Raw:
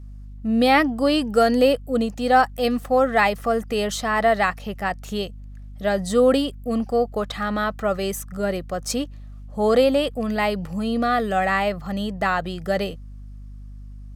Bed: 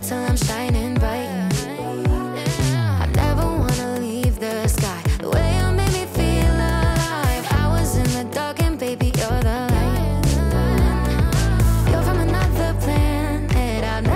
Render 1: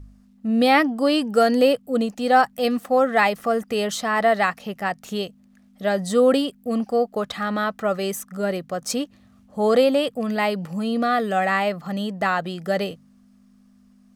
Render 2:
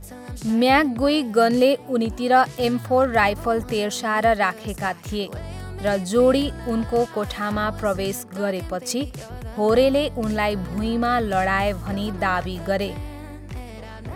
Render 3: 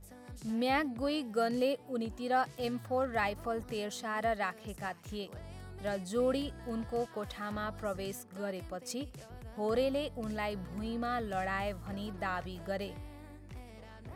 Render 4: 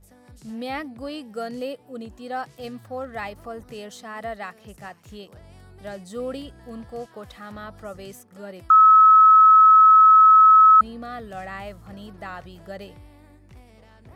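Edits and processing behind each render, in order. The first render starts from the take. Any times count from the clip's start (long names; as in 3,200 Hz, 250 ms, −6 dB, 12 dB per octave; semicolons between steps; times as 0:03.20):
hum removal 50 Hz, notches 3
mix in bed −15.5 dB
level −14 dB
0:08.70–0:10.81: beep over 1,290 Hz −8.5 dBFS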